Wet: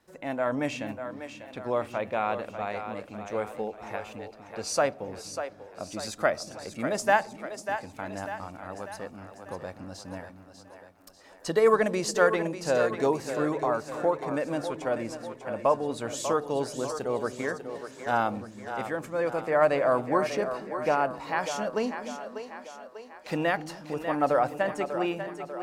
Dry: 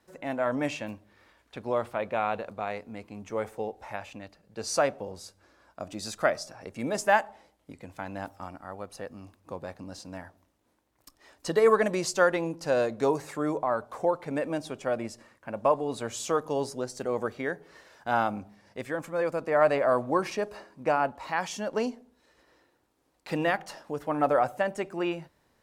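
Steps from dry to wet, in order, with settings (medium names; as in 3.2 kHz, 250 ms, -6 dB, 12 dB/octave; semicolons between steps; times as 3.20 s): two-band feedback delay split 320 Hz, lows 244 ms, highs 594 ms, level -9 dB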